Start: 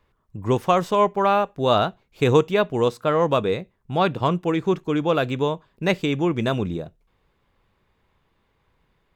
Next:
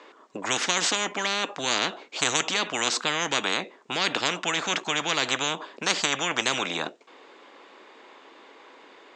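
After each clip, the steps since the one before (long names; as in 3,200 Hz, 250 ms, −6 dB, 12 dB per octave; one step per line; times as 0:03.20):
Chebyshev band-pass filter 280–7,400 Hz, order 4
every bin compressed towards the loudest bin 10 to 1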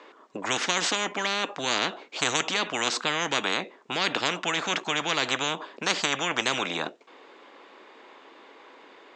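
high-shelf EQ 7,300 Hz −8 dB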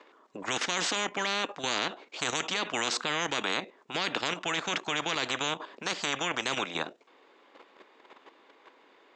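output level in coarse steps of 10 dB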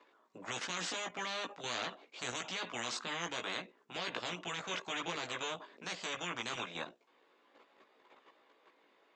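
multi-voice chorus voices 4, 0.76 Hz, delay 17 ms, depth 1 ms
level −6 dB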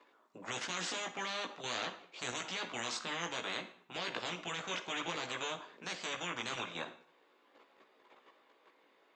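convolution reverb RT60 0.60 s, pre-delay 33 ms, DRR 11 dB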